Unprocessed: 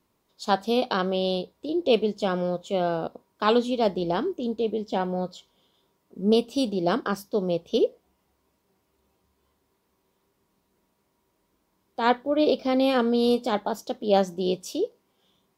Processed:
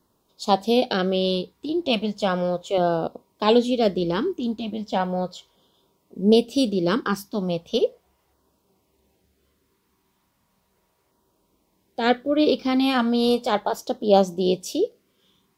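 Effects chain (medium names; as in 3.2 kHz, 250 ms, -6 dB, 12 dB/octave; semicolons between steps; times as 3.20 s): LFO notch saw down 0.36 Hz 200–2500 Hz; trim +4.5 dB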